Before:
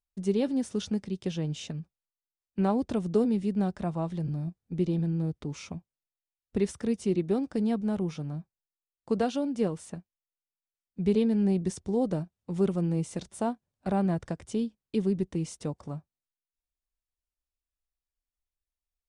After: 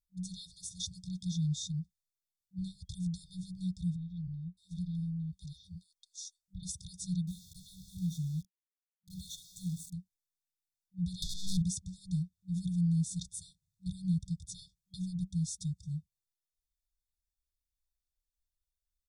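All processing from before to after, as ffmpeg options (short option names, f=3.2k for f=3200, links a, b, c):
-filter_complex "[0:a]asettb=1/sr,asplit=3[a][b][c];[a]atrim=end=3.964[d];[b]atrim=start=3.96:end=6.63,asetpts=PTS-STARTPTS,afade=t=in:d=0.004:c=qsin,afade=t=out:st=2.666:d=0.004:c=qsin,equalizer=f=140:w=1.5:g=-10,acrossover=split=3200[e][f];[f]adelay=610[g];[e][g]amix=inputs=2:normalize=0,atrim=end_sample=117747[h];[c]atrim=start=6.626[i];[d][h]acrossfade=d=0.004:c1=hsin:c2=qsin[j];[j][i]acrossfade=d=0.004:c1=qsin:c2=hsin,asettb=1/sr,asplit=3[k][l][m];[k]atrim=end=7.274[n];[l]atrim=start=7.27:end=9.93,asetpts=PTS-STARTPTS,afade=t=in:d=0.004:c=qsin,afade=t=out:st=2.656:d=0.004:c=qsin,equalizer=f=4.9k:w=4.3:g=-12.5,asplit=2[o][p];[p]adelay=73,lowpass=f=3.9k:p=1,volume=-15dB,asplit=2[q][r];[r]adelay=73,lowpass=f=3.9k:p=1,volume=0.33,asplit=2[s][t];[t]adelay=73,lowpass=f=3.9k:p=1,volume=0.33[u];[o][q][s][u]amix=inputs=4:normalize=0,atrim=end_sample=117306,aeval=exprs='val(0)*gte(abs(val(0)),0.00668)':c=same[v];[m]atrim=start=9.926[w];[n][v]acrossfade=d=0.004:c1=hsin:c2=qsin[x];[x][w]acrossfade=d=0.004:c1=qsin:c2=hsin,asettb=1/sr,asplit=3[y][z][aa];[y]atrim=end=11.224[ab];[z]atrim=start=11.22:end=11.62,asetpts=PTS-STARTPTS,afade=t=in:d=0.004:c=qsin,afade=t=out:st=0.396:d=0.004:c=qsin,bandreject=f=60:t=h:w=6,bandreject=f=120:t=h:w=6,bandreject=f=180:t=h:w=6,bandreject=f=240:t=h:w=6,bandreject=f=300:t=h:w=6,bandreject=f=360:t=h:w=6,bandreject=f=420:t=h:w=6,bandreject=f=480:t=h:w=6,bandreject=f=540:t=h:w=6,asplit=2[ac][ad];[ad]highpass=f=720:p=1,volume=35dB,asoftclip=type=tanh:threshold=-16.5dB[ae];[ac][ae]amix=inputs=2:normalize=0,lowpass=f=5.3k:p=1,volume=-6dB[af];[aa]atrim=start=11.616[ag];[ab][af]acrossfade=d=0.004:c1=hsin:c2=qsin[ah];[ah][ag]acrossfade=d=0.004:c1=qsin:c2=hsin,afftfilt=real='re*(1-between(b*sr/4096,190,3300))':imag='im*(1-between(b*sr/4096,190,3300))':win_size=4096:overlap=0.75,aecho=1:1:1.4:0.89,adynamicequalizer=threshold=0.00178:dfrequency=7100:dqfactor=1.2:tfrequency=7100:tqfactor=1.2:attack=5:release=100:ratio=0.375:range=2.5:mode=boostabove:tftype=bell,volume=-2.5dB"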